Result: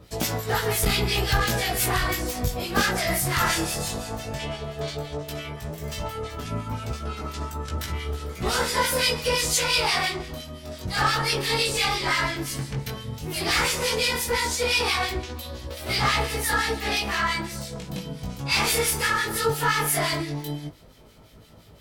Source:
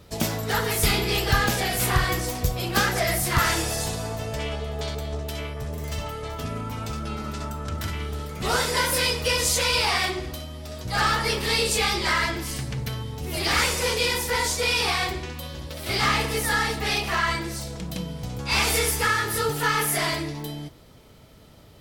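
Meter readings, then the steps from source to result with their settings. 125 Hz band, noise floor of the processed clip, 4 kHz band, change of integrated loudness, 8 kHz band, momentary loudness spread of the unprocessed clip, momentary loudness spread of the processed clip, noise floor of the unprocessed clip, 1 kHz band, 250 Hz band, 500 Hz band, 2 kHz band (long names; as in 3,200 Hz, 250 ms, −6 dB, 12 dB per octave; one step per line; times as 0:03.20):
−1.0 dB, −49 dBFS, 0.0 dB, −0.5 dB, −0.5 dB, 11 LU, 12 LU, −49 dBFS, −0.5 dB, −0.5 dB, 0.0 dB, −0.5 dB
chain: two-band tremolo in antiphase 5.8 Hz, depth 70%, crossover 1,600 Hz
chorus effect 0.13 Hz, delay 16 ms, depth 5.9 ms
saturating transformer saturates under 96 Hz
level +6 dB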